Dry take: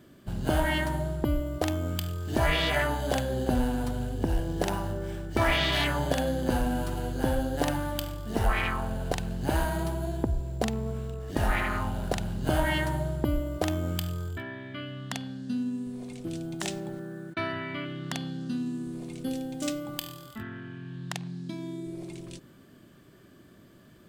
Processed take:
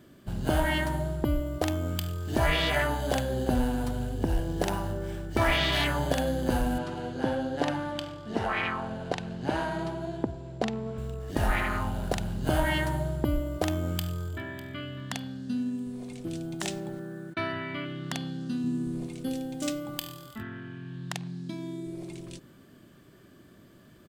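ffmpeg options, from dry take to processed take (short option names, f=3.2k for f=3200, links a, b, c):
-filter_complex "[0:a]asettb=1/sr,asplit=3[a][b][c];[a]atrim=end=6.784[d];[b]atrim=start=6.78:end=10.98,asetpts=PTS-STARTPTS,afade=t=in:d=0.004:c=qsin,afade=t=out:st=4.196:d=0.004:c=qsin,highpass=140,lowpass=4.9k[e];[c]atrim=start=10.976[f];[d][e]acrossfade=d=0.004:c1=hsin:c2=qsin[g];[g][f]acrossfade=d=0.004:c1=qsin:c2=hsin,asplit=2[h][i];[i]afade=t=in:st=13.73:d=0.01,afade=t=out:st=14.62:d=0.01,aecho=0:1:600|1200|1800:0.141254|0.0494388|0.0173036[j];[h][j]amix=inputs=2:normalize=0,asettb=1/sr,asplit=3[k][l][m];[k]atrim=end=18.644[n];[l]atrim=start=18.64:end=19.07,asetpts=PTS-STARTPTS,afade=t=in:d=0.004:c=qsin,afade=t=out:st=0.426:d=0.004:c=qsin,lowshelf=f=230:g=8[o];[m]atrim=start=19.066[p];[n][o]acrossfade=d=0.004:c1=hsin:c2=qsin[q];[q][p]acrossfade=d=0.004:c1=qsin:c2=hsin"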